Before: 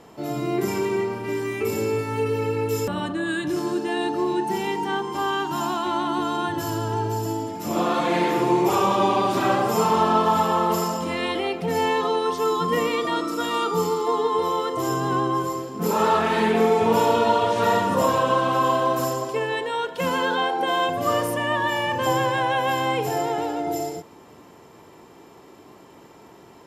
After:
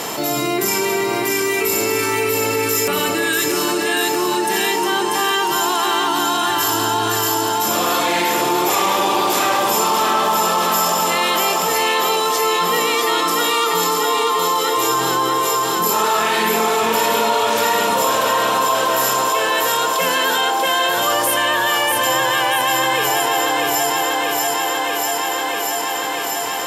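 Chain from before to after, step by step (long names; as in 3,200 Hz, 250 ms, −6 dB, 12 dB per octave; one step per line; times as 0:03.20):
spectral tilt +3.5 dB per octave
on a send: feedback echo with a high-pass in the loop 639 ms, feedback 66%, high-pass 160 Hz, level −4 dB
on the sum: envelope flattener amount 70%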